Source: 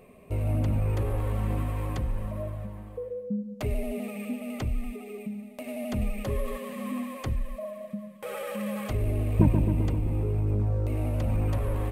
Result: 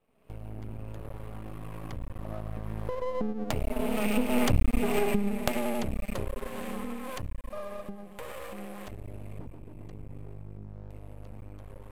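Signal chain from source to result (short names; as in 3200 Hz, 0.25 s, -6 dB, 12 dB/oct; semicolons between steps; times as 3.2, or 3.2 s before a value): recorder AGC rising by 43 dB/s; Doppler pass-by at 4.65, 10 m/s, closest 5.5 m; half-wave rectifier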